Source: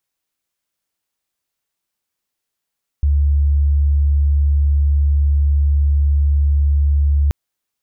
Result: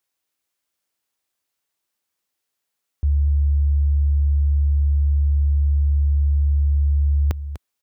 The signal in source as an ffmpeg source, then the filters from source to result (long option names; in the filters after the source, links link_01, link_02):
-f lavfi -i "sine=frequency=71.8:duration=4.28:sample_rate=44100,volume=7.06dB"
-filter_complex "[0:a]highpass=66,equalizer=frequency=150:width_type=o:width=0.83:gain=-6.5,asplit=2[link_01][link_02];[link_02]aecho=0:1:247:0.266[link_03];[link_01][link_03]amix=inputs=2:normalize=0"